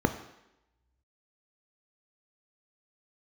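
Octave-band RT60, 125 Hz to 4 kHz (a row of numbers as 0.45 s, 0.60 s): 0.80 s, 0.90 s, 0.90 s, 0.90 s, 0.90 s, 0.85 s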